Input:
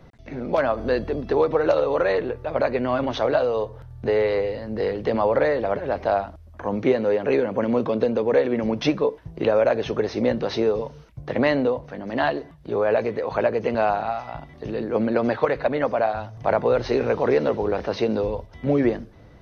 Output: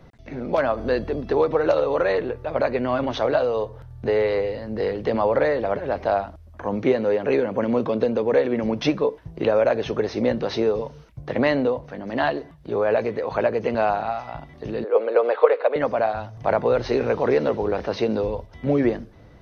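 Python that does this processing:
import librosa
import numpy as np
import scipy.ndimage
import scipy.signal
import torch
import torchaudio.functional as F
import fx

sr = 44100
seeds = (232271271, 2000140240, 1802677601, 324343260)

y = fx.cabinet(x, sr, low_hz=440.0, low_slope=24, high_hz=3800.0, hz=(470.0, 1200.0, 1800.0), db=(10, 4, -4), at=(14.84, 15.76))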